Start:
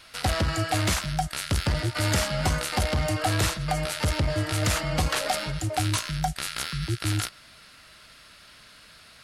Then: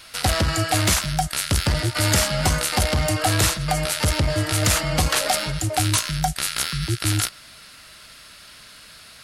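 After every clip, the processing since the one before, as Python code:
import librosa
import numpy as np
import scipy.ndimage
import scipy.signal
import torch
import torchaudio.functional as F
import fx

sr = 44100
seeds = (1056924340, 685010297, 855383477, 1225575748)

y = fx.high_shelf(x, sr, hz=5300.0, db=7.0)
y = y * 10.0 ** (4.0 / 20.0)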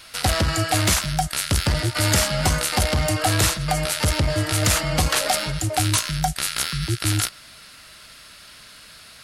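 y = x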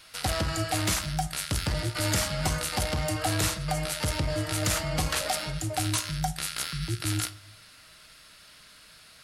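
y = fx.room_shoebox(x, sr, seeds[0], volume_m3=520.0, walls='furnished', distance_m=0.55)
y = y * 10.0 ** (-8.0 / 20.0)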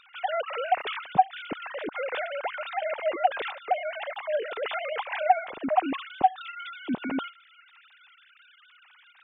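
y = fx.sine_speech(x, sr)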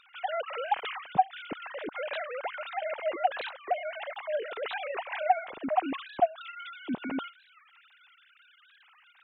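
y = fx.record_warp(x, sr, rpm=45.0, depth_cents=250.0)
y = y * 10.0 ** (-3.5 / 20.0)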